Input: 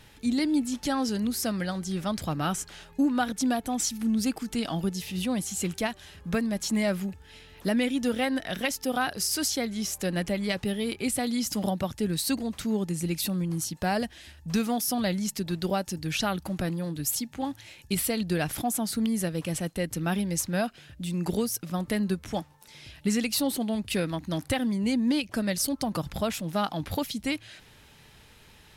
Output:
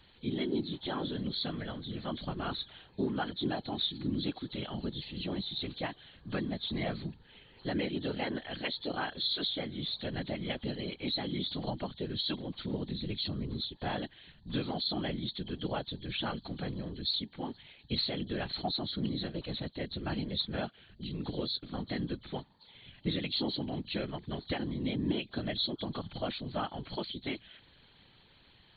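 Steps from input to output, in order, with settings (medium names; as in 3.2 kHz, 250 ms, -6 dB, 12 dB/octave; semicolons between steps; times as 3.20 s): knee-point frequency compression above 3 kHz 4:1; whisper effect; trim -8 dB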